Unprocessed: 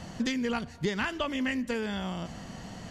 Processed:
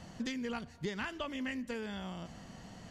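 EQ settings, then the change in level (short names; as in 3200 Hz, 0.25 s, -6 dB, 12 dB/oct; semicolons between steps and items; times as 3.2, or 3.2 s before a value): none; -8.0 dB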